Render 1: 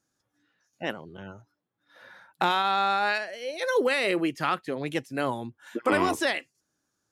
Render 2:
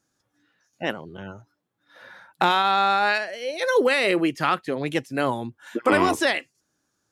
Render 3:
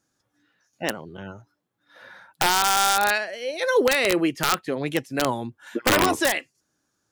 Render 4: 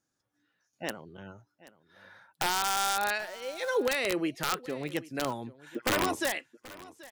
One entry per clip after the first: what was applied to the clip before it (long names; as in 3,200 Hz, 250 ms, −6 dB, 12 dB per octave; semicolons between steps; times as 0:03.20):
high-shelf EQ 12,000 Hz −3.5 dB; level +4.5 dB
wrap-around overflow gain 10.5 dB
single-tap delay 782 ms −19.5 dB; level −8.5 dB